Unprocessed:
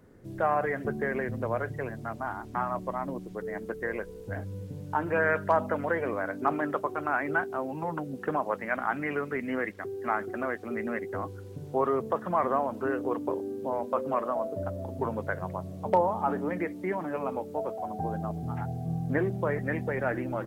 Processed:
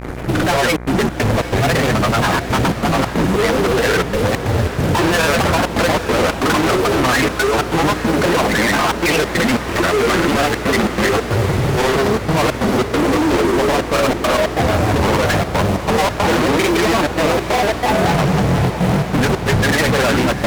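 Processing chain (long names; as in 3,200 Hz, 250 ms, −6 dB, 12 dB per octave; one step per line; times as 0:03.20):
parametric band 2,200 Hz +7.5 dB 0.4 octaves
fuzz pedal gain 50 dB, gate −55 dBFS
granular cloud, pitch spread up and down by 3 semitones
gate pattern "xxxxxxx.xx.xx.x" 138 BPM −60 dB
feedback delay with all-pass diffusion 808 ms, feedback 71%, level −11.5 dB
hum with harmonics 60 Hz, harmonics 40, −30 dBFS −5 dB per octave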